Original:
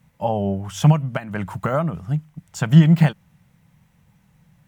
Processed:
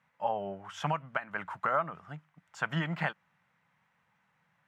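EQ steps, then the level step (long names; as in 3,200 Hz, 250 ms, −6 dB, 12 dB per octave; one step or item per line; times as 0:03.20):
resonant band-pass 1,400 Hz, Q 1.3
−1.5 dB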